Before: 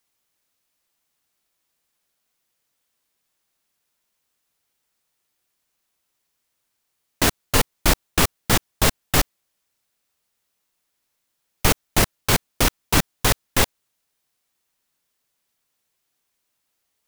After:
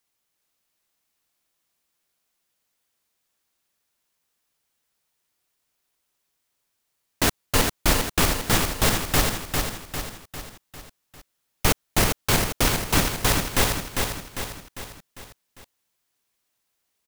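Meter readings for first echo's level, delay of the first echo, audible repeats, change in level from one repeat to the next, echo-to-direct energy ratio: -4.5 dB, 0.4 s, 5, -6.0 dB, -3.0 dB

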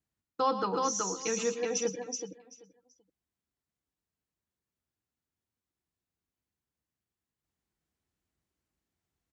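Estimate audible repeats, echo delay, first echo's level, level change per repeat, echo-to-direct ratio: 5, 0.116 s, -10.5 dB, no steady repeat, -2.0 dB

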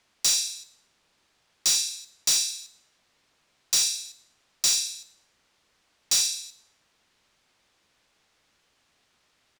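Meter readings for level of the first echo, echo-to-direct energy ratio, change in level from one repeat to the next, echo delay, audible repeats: -20.0 dB, -19.0 dB, -7.5 dB, 0.109 s, 2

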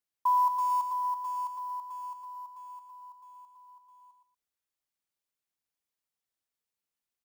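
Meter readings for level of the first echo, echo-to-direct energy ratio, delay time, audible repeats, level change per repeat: -7.0 dB, -7.0 dB, 0.117 s, 2, -12.5 dB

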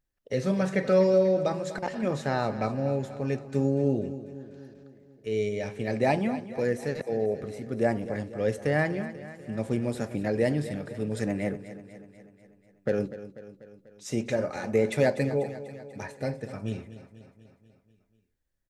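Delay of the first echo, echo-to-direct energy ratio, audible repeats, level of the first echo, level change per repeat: 0.245 s, -12.0 dB, 5, -14.0 dB, -4.5 dB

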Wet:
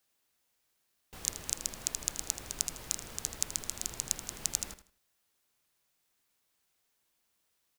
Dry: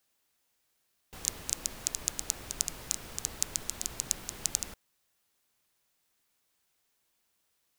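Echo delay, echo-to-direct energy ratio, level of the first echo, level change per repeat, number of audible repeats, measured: 80 ms, -12.5 dB, -13.0 dB, -11.0 dB, 3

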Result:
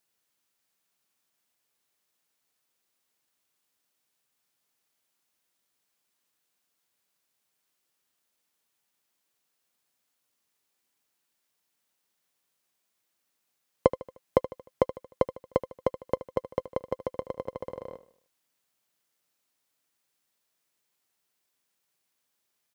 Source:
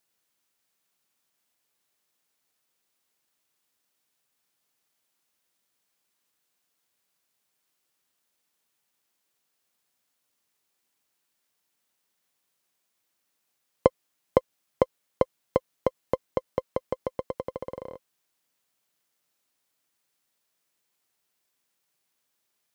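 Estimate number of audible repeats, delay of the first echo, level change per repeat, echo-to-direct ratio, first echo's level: 3, 76 ms, -7.0 dB, -14.0 dB, -15.0 dB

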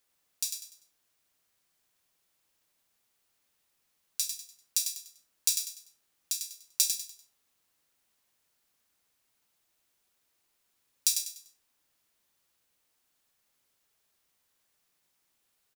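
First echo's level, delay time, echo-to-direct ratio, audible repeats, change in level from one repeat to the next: -6.5 dB, 98 ms, -6.0 dB, 3, -9.5 dB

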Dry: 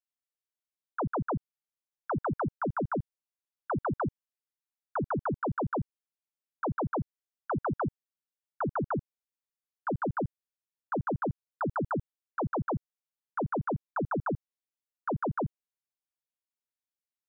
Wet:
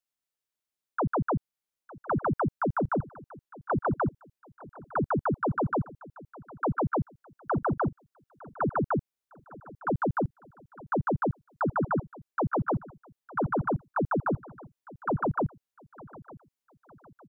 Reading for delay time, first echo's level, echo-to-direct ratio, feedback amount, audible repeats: 0.907 s, -20.0 dB, -19.5 dB, 40%, 2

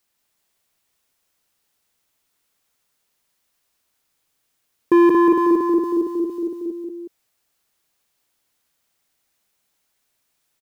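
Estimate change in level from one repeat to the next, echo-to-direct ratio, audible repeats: -4.5 dB, -2.5 dB, 2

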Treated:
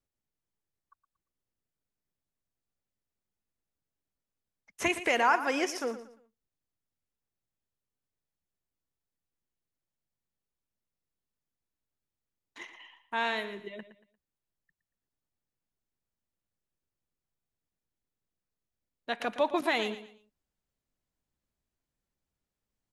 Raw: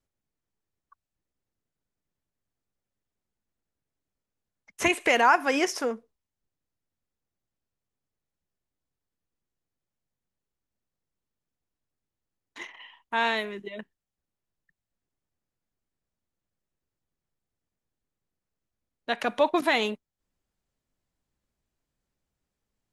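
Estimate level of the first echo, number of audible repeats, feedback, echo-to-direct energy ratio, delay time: -13.0 dB, 3, 31%, -12.5 dB, 0.116 s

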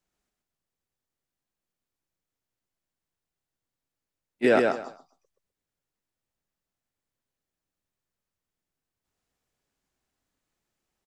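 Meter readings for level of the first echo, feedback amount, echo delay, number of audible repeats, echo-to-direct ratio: -3.5 dB, 21%, 0.127 s, 3, -3.5 dB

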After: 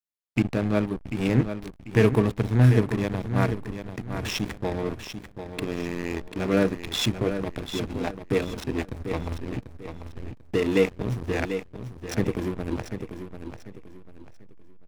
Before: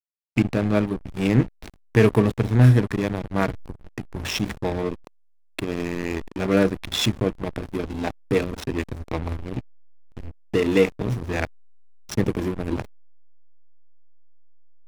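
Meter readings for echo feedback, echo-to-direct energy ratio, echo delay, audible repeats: 31%, -8.5 dB, 0.742 s, 3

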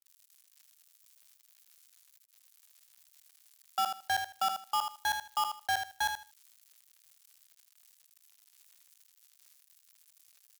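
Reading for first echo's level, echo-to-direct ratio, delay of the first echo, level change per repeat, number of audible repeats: -7.0 dB, -7.0 dB, 78 ms, -14.5 dB, 2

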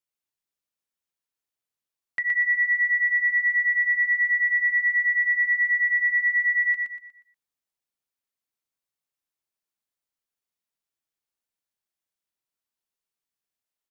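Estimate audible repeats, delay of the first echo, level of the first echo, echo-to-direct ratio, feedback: 4, 0.12 s, -4.0 dB, -3.5 dB, 36%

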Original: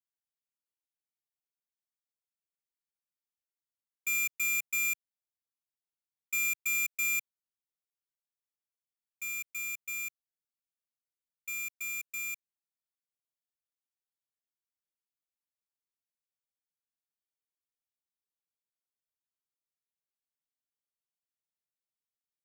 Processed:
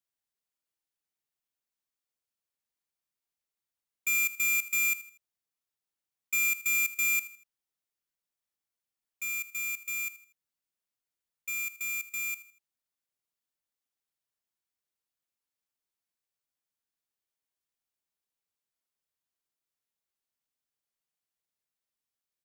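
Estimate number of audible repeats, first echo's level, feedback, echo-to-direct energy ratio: 3, -16.0 dB, 37%, -15.5 dB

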